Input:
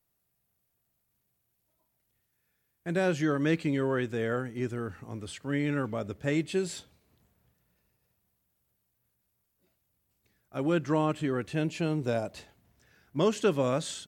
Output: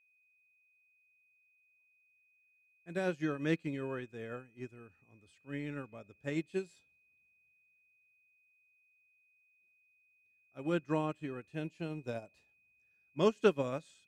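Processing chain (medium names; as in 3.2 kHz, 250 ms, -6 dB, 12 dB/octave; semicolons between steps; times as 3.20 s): whistle 2.5 kHz -45 dBFS; upward expansion 2.5:1, over -37 dBFS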